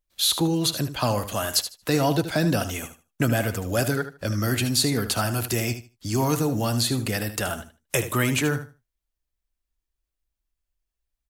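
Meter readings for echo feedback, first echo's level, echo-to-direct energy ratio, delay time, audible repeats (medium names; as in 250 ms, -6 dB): 19%, -11.0 dB, -11.0 dB, 76 ms, 2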